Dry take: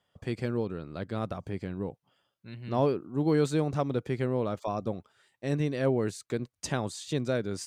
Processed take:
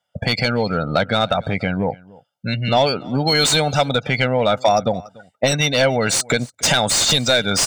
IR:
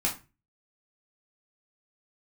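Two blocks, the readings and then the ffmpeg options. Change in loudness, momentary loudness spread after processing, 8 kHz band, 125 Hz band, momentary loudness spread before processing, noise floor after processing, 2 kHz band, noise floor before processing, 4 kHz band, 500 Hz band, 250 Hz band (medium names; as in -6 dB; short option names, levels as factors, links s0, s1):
+13.0 dB, 9 LU, +23.5 dB, +9.0 dB, 10 LU, -74 dBFS, +20.5 dB, -82 dBFS, +26.5 dB, +11.0 dB, +7.5 dB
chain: -filter_complex "[0:a]afftdn=nr=31:nf=-51,bass=f=250:g=3,treble=f=4000:g=14,aecho=1:1:1.4:0.77,acrossover=split=2400[s0][s1];[s0]acompressor=threshold=0.0126:ratio=10[s2];[s2][s1]amix=inputs=2:normalize=0,asplit=2[s3][s4];[s4]highpass=f=720:p=1,volume=39.8,asoftclip=type=tanh:threshold=0.531[s5];[s3][s5]amix=inputs=2:normalize=0,lowpass=f=1700:p=1,volume=0.501,asplit=2[s6][s7];[s7]aecho=0:1:289:0.0668[s8];[s6][s8]amix=inputs=2:normalize=0,volume=2.11"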